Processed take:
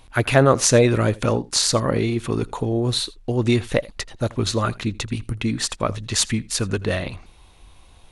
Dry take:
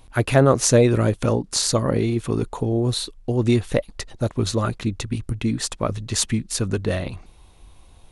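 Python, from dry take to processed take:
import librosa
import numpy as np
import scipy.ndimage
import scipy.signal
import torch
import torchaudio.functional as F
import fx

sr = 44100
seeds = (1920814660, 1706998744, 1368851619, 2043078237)

p1 = fx.peak_eq(x, sr, hz=2400.0, db=5.5, octaves=3.0)
p2 = p1 + fx.echo_single(p1, sr, ms=82, db=-22.5, dry=0)
y = F.gain(torch.from_numpy(p2), -1.0).numpy()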